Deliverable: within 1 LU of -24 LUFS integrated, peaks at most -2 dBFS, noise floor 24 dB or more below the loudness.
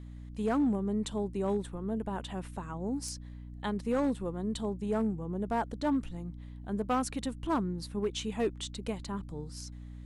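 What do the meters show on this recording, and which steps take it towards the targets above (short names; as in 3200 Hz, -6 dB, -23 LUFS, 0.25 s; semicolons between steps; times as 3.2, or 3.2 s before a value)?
clipped 0.7%; flat tops at -23.0 dBFS; hum 60 Hz; harmonics up to 300 Hz; hum level -42 dBFS; loudness -34.0 LUFS; peak -23.0 dBFS; loudness target -24.0 LUFS
-> clip repair -23 dBFS; notches 60/120/180/240/300 Hz; gain +10 dB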